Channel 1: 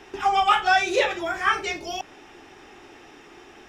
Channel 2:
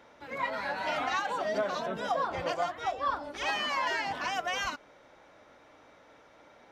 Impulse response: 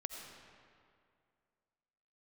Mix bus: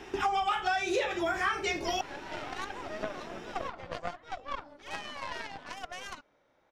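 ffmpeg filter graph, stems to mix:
-filter_complex "[0:a]acontrast=85,volume=-7.5dB[link_01];[1:a]lowpass=8700,aeval=exprs='0.133*(cos(1*acos(clip(val(0)/0.133,-1,1)))-cos(1*PI/2))+0.0335*(cos(3*acos(clip(val(0)/0.133,-1,1)))-cos(3*PI/2))+0.00944*(cos(4*acos(clip(val(0)/0.133,-1,1)))-cos(4*PI/2))':channel_layout=same,adelay=1450,volume=-1.5dB[link_02];[link_01][link_02]amix=inputs=2:normalize=0,lowshelf=frequency=400:gain=3.5,acompressor=threshold=-26dB:ratio=10"

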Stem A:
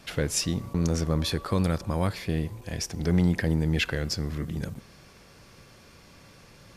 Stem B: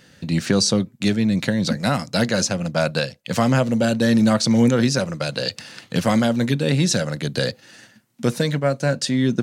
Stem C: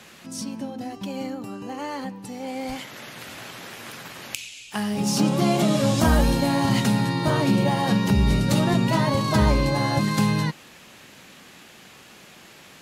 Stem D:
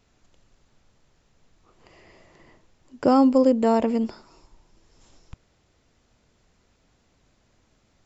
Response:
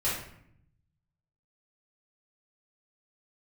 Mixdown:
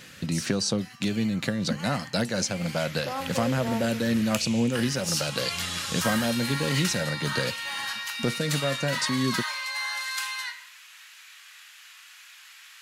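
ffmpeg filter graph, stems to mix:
-filter_complex "[0:a]adelay=2450,volume=-19dB,asplit=2[link_01][link_02];[link_02]volume=-17.5dB[link_03];[1:a]volume=2dB[link_04];[2:a]highpass=frequency=1300:width=0.5412,highpass=frequency=1300:width=1.3066,volume=-2dB,asplit=2[link_05][link_06];[link_06]volume=-12dB[link_07];[3:a]highpass=670,volume=-11dB,asplit=2[link_08][link_09];[link_09]volume=-14dB[link_10];[link_01][link_04]amix=inputs=2:normalize=0,tremolo=f=4.1:d=0.3,acompressor=threshold=-30dB:ratio=2,volume=0dB[link_11];[4:a]atrim=start_sample=2205[link_12];[link_03][link_07][link_10]amix=inputs=3:normalize=0[link_13];[link_13][link_12]afir=irnorm=-1:irlink=0[link_14];[link_05][link_08][link_11][link_14]amix=inputs=4:normalize=0"

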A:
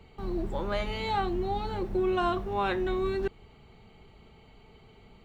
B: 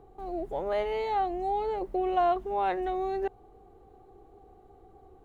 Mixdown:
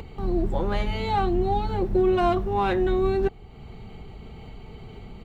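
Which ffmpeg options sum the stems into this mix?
ffmpeg -i stem1.wav -i stem2.wav -filter_complex "[0:a]lowshelf=frequency=300:gain=8.5,acompressor=mode=upward:threshold=-33dB:ratio=2.5,volume=1dB[link_01];[1:a]asoftclip=type=hard:threshold=-23.5dB,volume=-1,adelay=9.7,volume=-2.5dB[link_02];[link_01][link_02]amix=inputs=2:normalize=0" out.wav

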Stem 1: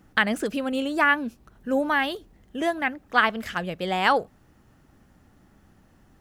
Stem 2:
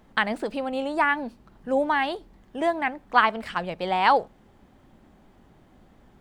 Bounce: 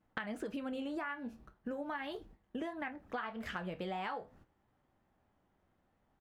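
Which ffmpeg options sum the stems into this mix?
ffmpeg -i stem1.wav -i stem2.wav -filter_complex "[0:a]agate=range=-17dB:threshold=-50dB:ratio=16:detection=peak,acompressor=threshold=-28dB:ratio=3,volume=1dB[link_01];[1:a]highpass=530,flanger=delay=19:depth=6.8:speed=1.7,adelay=7,volume=-9dB[link_02];[link_01][link_02]amix=inputs=2:normalize=0,flanger=delay=8.7:depth=7:regen=-69:speed=0.4:shape=sinusoidal,highshelf=frequency=3800:gain=-11,acompressor=threshold=-37dB:ratio=5" out.wav

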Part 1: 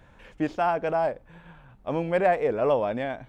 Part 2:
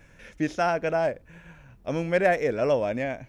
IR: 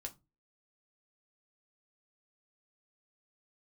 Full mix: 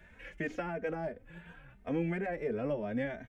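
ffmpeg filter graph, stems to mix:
-filter_complex "[0:a]volume=0.5dB,asplit=2[link_01][link_02];[1:a]acompressor=threshold=-38dB:ratio=2,volume=-5dB[link_03];[link_02]apad=whole_len=144720[link_04];[link_03][link_04]sidechaingate=range=-33dB:threshold=-46dB:ratio=16:detection=peak[link_05];[link_01][link_05]amix=inputs=2:normalize=0,acrossover=split=350[link_06][link_07];[link_07]acompressor=threshold=-32dB:ratio=6[link_08];[link_06][link_08]amix=inputs=2:normalize=0,equalizer=frequency=125:width_type=o:width=1:gain=-5,equalizer=frequency=1000:width_type=o:width=1:gain=-9,equalizer=frequency=2000:width_type=o:width=1:gain=10,equalizer=frequency=4000:width_type=o:width=1:gain=-5,asplit=2[link_09][link_10];[link_10]adelay=3,afreqshift=2.9[link_11];[link_09][link_11]amix=inputs=2:normalize=1"

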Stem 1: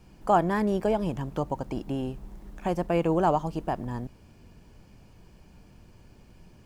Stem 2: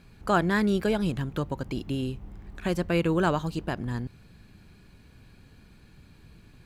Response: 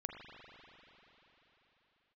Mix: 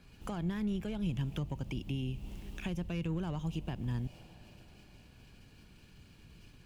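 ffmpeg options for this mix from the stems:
-filter_complex "[0:a]agate=range=-33dB:threshold=-45dB:ratio=3:detection=peak,highshelf=frequency=2000:width_type=q:width=3:gain=10.5,asoftclip=type=tanh:threshold=-22.5dB,volume=-8dB,asplit=2[link_01][link_02];[link_02]volume=-12.5dB[link_03];[1:a]alimiter=limit=-17dB:level=0:latency=1,volume=-5dB[link_04];[2:a]atrim=start_sample=2205[link_05];[link_03][link_05]afir=irnorm=-1:irlink=0[link_06];[link_01][link_04][link_06]amix=inputs=3:normalize=0,acrossover=split=180[link_07][link_08];[link_08]acompressor=threshold=-42dB:ratio=5[link_09];[link_07][link_09]amix=inputs=2:normalize=0"

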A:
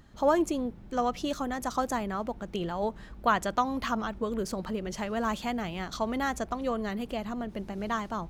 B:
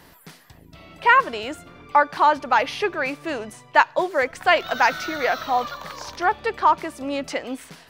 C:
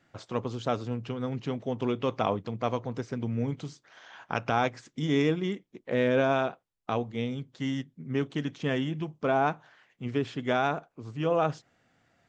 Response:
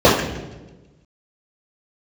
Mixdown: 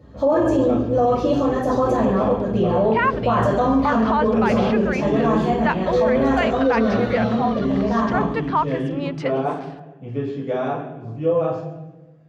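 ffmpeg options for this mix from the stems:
-filter_complex "[0:a]volume=-17dB,asplit=2[link_01][link_02];[link_02]volume=-3dB[link_03];[1:a]lowpass=3900,adelay=1900,volume=-2.5dB[link_04];[2:a]volume=-13.5dB,asplit=2[link_05][link_06];[link_06]volume=-15.5dB[link_07];[3:a]atrim=start_sample=2205[link_08];[link_03][link_07]amix=inputs=2:normalize=0[link_09];[link_09][link_08]afir=irnorm=-1:irlink=0[link_10];[link_01][link_04][link_05][link_10]amix=inputs=4:normalize=0,alimiter=limit=-10dB:level=0:latency=1:release=17"

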